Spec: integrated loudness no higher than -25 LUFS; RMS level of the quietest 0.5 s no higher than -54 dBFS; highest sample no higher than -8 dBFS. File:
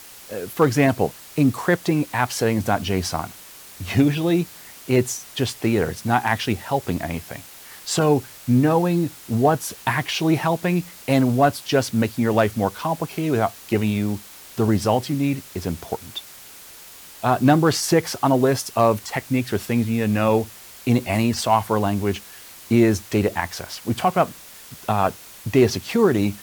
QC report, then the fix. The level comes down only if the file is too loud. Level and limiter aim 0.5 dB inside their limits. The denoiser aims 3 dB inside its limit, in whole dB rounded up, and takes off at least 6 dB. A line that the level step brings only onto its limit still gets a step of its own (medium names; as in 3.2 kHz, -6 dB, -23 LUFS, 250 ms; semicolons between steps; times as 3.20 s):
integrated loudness -21.5 LUFS: fail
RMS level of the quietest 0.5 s -43 dBFS: fail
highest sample -6.5 dBFS: fail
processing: noise reduction 10 dB, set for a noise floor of -43 dBFS; trim -4 dB